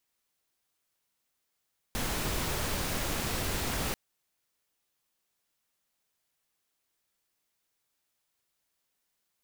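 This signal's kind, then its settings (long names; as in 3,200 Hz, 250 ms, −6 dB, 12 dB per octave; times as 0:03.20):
noise pink, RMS −32 dBFS 1.99 s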